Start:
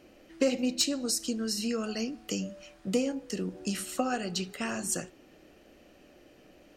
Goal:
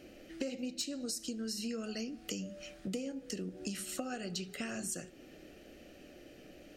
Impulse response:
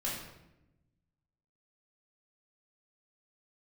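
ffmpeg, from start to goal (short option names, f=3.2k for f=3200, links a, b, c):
-filter_complex "[0:a]equalizer=f=990:w=3.3:g=-13.5,acompressor=threshold=-41dB:ratio=4,asplit=2[a][b];[1:a]atrim=start_sample=2205[c];[b][c]afir=irnorm=-1:irlink=0,volume=-25dB[d];[a][d]amix=inputs=2:normalize=0,volume=2.5dB"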